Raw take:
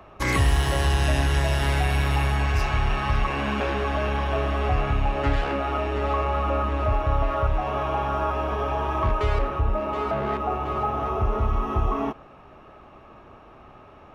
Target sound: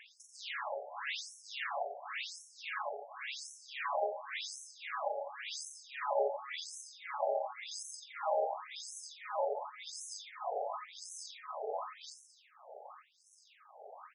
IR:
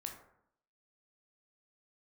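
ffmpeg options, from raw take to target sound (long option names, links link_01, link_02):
-filter_complex "[0:a]highpass=frequency=350:poles=1,acrossover=split=750[link_01][link_02];[link_01]acrusher=samples=31:mix=1:aa=0.000001[link_03];[link_02]acompressor=threshold=-39dB:ratio=6[link_04];[link_03][link_04]amix=inputs=2:normalize=0,asettb=1/sr,asplit=3[link_05][link_06][link_07];[link_05]atrim=end=10.174[link_08];[link_06]atrim=start=10.17:end=10.57,asetpts=PTS-STARTPTS,afade=type=in:duration=0.004:curve=qsin,afade=type=out:start_time=0.396:duration=0.004:curve=qsin,volume=35dB,asoftclip=hard,volume=-35dB[link_09];[link_07]atrim=start=10.566[link_10];[link_08][link_09]acrossfade=duration=0.004:curve1=hsin:curve2=qsin[link_11];[link_11][link_10]acrossfade=duration=0.004:curve1=qsin:curve2=hsin,tremolo=f=1.8:d=0.93,asoftclip=type=tanh:threshold=-28.5dB,aecho=1:1:40|88|145.6|214.7|297.7:0.631|0.398|0.251|0.158|0.1,afftfilt=real='re*between(b*sr/1024,580*pow(7800/580,0.5+0.5*sin(2*PI*0.92*pts/sr))/1.41,580*pow(7800/580,0.5+0.5*sin(2*PI*0.92*pts/sr))*1.41)':imag='im*between(b*sr/1024,580*pow(7800/580,0.5+0.5*sin(2*PI*0.92*pts/sr))/1.41,580*pow(7800/580,0.5+0.5*sin(2*PI*0.92*pts/sr))*1.41)':win_size=1024:overlap=0.75,volume=5dB"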